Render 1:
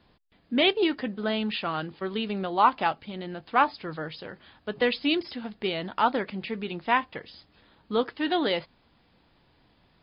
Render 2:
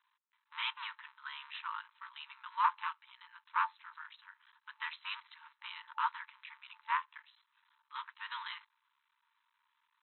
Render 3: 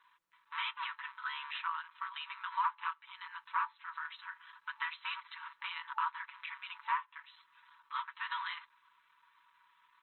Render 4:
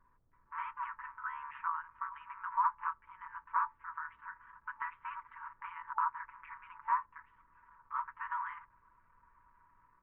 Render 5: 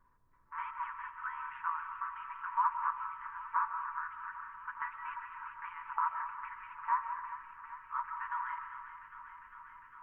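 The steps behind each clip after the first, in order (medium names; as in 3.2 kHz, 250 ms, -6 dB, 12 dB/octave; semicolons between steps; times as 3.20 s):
cycle switcher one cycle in 3, muted; treble shelf 2.2 kHz -11.5 dB; FFT band-pass 880–4100 Hz; trim -4 dB
comb 6.1 ms, depth 77%; compression 2.5:1, threshold -47 dBFS, peak gain reduction 16.5 dB; treble shelf 3.4 kHz -11.5 dB; trim +11 dB
level rider gain up to 6 dB; added noise brown -72 dBFS; Gaussian low-pass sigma 6.2 samples
on a send: feedback echo behind a high-pass 402 ms, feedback 80%, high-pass 1.4 kHz, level -9 dB; on the sum: algorithmic reverb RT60 0.96 s, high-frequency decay 0.95×, pre-delay 105 ms, DRR 6.5 dB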